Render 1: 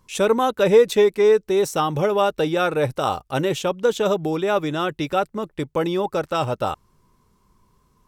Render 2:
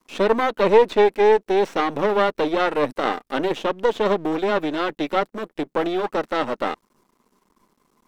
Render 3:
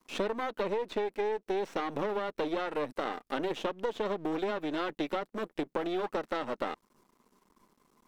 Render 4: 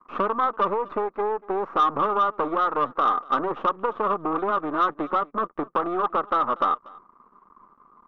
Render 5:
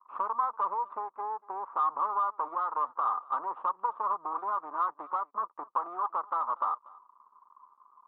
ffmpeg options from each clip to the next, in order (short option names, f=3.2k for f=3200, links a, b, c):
-filter_complex "[0:a]aeval=exprs='max(val(0),0)':c=same,acrossover=split=4300[a][b];[b]acompressor=threshold=-56dB:ratio=4:attack=1:release=60[c];[a][c]amix=inputs=2:normalize=0,lowshelf=f=160:t=q:w=1.5:g=-13,volume=3.5dB"
-af "alimiter=limit=-11dB:level=0:latency=1:release=330,acompressor=threshold=-25dB:ratio=6,volume=-3.5dB"
-af "lowpass=f=1.2k:t=q:w=11,asoftclip=type=tanh:threshold=-16.5dB,aecho=1:1:239:0.0708,volume=4dB"
-af "bandpass=f=970:t=q:w=5.5:csg=0"